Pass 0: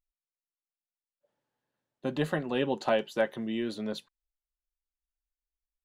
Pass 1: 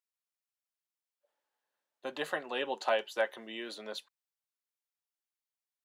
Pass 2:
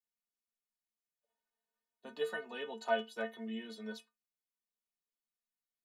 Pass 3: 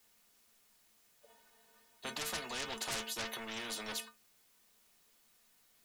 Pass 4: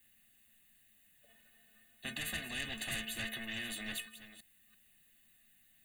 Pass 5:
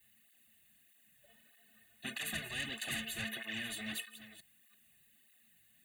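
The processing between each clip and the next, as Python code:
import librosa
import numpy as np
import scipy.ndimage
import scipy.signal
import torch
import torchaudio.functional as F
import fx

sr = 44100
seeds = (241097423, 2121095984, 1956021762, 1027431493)

y1 = scipy.signal.sosfilt(scipy.signal.butter(2, 610.0, 'highpass', fs=sr, output='sos'), x)
y2 = fx.low_shelf(y1, sr, hz=330.0, db=10.5)
y2 = fx.stiff_resonator(y2, sr, f0_hz=220.0, decay_s=0.22, stiffness=0.008)
y2 = F.gain(torch.from_numpy(y2), 4.5).numpy()
y3 = 10.0 ** (-36.5 / 20.0) * np.tanh(y2 / 10.0 ** (-36.5 / 20.0))
y3 = fx.spectral_comp(y3, sr, ratio=4.0)
y3 = F.gain(torch.from_numpy(y3), 15.5).numpy()
y4 = fx.reverse_delay(y3, sr, ms=339, wet_db=-13)
y4 = fx.fixed_phaser(y4, sr, hz=2300.0, stages=4)
y4 = y4 + 0.7 * np.pad(y4, (int(1.1 * sr / 1000.0), 0))[:len(y4)]
y4 = F.gain(torch.from_numpy(y4), 2.0).numpy()
y5 = fx.flanger_cancel(y4, sr, hz=1.6, depth_ms=4.3)
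y5 = F.gain(torch.from_numpy(y5), 3.0).numpy()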